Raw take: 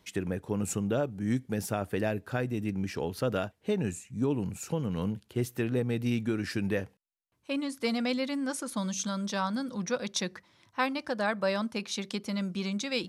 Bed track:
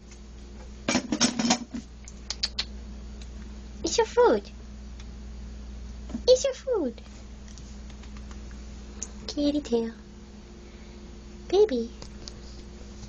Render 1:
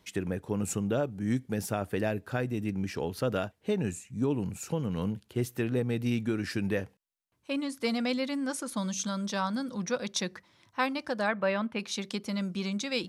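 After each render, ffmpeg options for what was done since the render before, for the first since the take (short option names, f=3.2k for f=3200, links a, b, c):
-filter_complex "[0:a]asettb=1/sr,asplit=3[a][b][c];[a]atrim=end=11.284[d];[b]atrim=start=11.28:end=11.79,asetpts=PTS-STARTPTS,afade=t=in:d=0.004:c=qsin,afade=t=out:st=0.506:d=0.004:c=qsin,highshelf=f=3.9k:t=q:w=1.5:g=-13.5[e];[c]atrim=start=11.786[f];[d][e]acrossfade=d=0.004:c1=hsin:c2=qsin[g];[g][f]acrossfade=d=0.004:c1=qsin:c2=hsin"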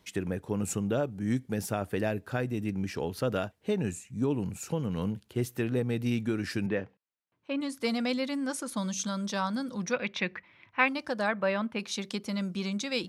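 -filter_complex "[0:a]asettb=1/sr,asplit=3[a][b][c];[a]atrim=end=6.664[d];[b]atrim=start=6.66:end=7.61,asetpts=PTS-STARTPTS,afade=t=in:d=0.004:c=qsin,afade=t=out:st=0.946:d=0.004:c=qsin,highpass=120,lowpass=3k[e];[c]atrim=start=7.606[f];[d][e]acrossfade=d=0.004:c1=hsin:c2=qsin[g];[g][f]acrossfade=d=0.004:c1=qsin:c2=hsin,asettb=1/sr,asplit=3[h][i][j];[h]atrim=end=9.934[k];[i]atrim=start=9.93:end=10.88,asetpts=PTS-STARTPTS,afade=t=in:d=0.004:c=qsin,afade=t=out:st=0.946:d=0.004:c=qsin,lowpass=f=2.4k:t=q:w=3.8[l];[j]atrim=start=10.876[m];[k][l]acrossfade=d=0.004:c1=hsin:c2=qsin[n];[n][m]acrossfade=d=0.004:c1=qsin:c2=hsin"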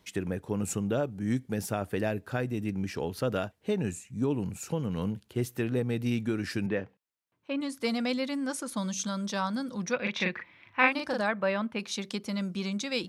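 -filter_complex "[0:a]asettb=1/sr,asplit=3[a][b][c];[a]atrim=end=10.014[d];[b]atrim=start=10.01:end=11.21,asetpts=PTS-STARTPTS,afade=t=in:d=0.004:c=qsin,afade=t=out:st=1.196:d=0.004:c=qsin,asplit=2[e][f];[f]adelay=39,volume=-2dB[g];[e][g]amix=inputs=2:normalize=0,atrim=end_sample=52920[h];[c]atrim=start=11.206[i];[d][h]acrossfade=d=0.004:c1=hsin:c2=qsin[j];[j][i]acrossfade=d=0.004:c1=qsin:c2=hsin"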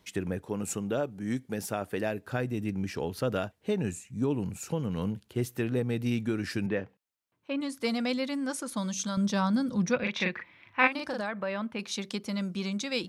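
-filter_complex "[0:a]asettb=1/sr,asplit=3[a][b][c];[a]atrim=end=0.434[d];[b]atrim=start=0.43:end=2.25,asetpts=PTS-STARTPTS,afade=t=in:d=0.004:c=qsin,afade=t=out:st=1.816:d=0.004:c=qsin,lowshelf=f=120:g=-11[e];[c]atrim=start=2.246[f];[d][e]acrossfade=d=0.004:c1=hsin:c2=qsin[g];[g][f]acrossfade=d=0.004:c1=qsin:c2=hsin,asettb=1/sr,asplit=3[h][i][j];[h]atrim=end=9.174[k];[i]atrim=start=9.17:end=10.04,asetpts=PTS-STARTPTS,afade=t=in:d=0.004:c=qsin,afade=t=out:st=0.866:d=0.004:c=qsin,equalizer=f=85:w=0.37:g=11[l];[j]atrim=start=10.036[m];[k][l]acrossfade=d=0.004:c1=hsin:c2=qsin[n];[n][m]acrossfade=d=0.004:c1=qsin:c2=hsin,asettb=1/sr,asplit=3[o][p][q];[o]atrim=end=10.874[r];[p]atrim=start=10.87:end=11.79,asetpts=PTS-STARTPTS,afade=t=in:d=0.004:c=qsin,afade=t=out:st=0.916:d=0.004:c=qsin,acompressor=threshold=-30dB:ratio=2.5:attack=3.2:release=140:knee=1:detection=peak[s];[q]atrim=start=11.786[t];[r][s]acrossfade=d=0.004:c1=hsin:c2=qsin[u];[u][t]acrossfade=d=0.004:c1=qsin:c2=hsin"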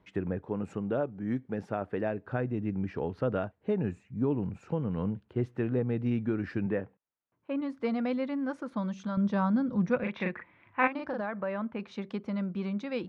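-af "lowpass=1.6k"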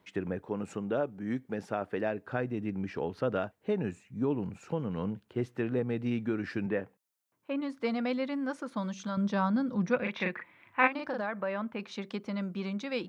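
-af "highpass=f=170:p=1,highshelf=f=3.4k:g=11"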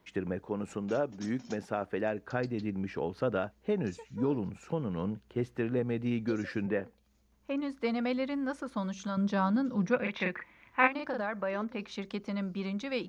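-filter_complex "[1:a]volume=-26.5dB[a];[0:a][a]amix=inputs=2:normalize=0"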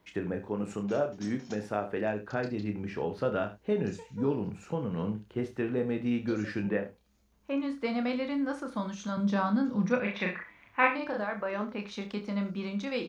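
-filter_complex "[0:a]asplit=2[a][b];[b]adelay=29,volume=-6.5dB[c];[a][c]amix=inputs=2:normalize=0,aecho=1:1:65|75:0.158|0.168"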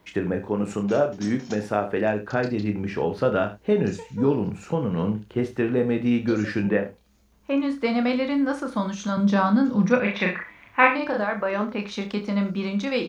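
-af "volume=8dB,alimiter=limit=-1dB:level=0:latency=1"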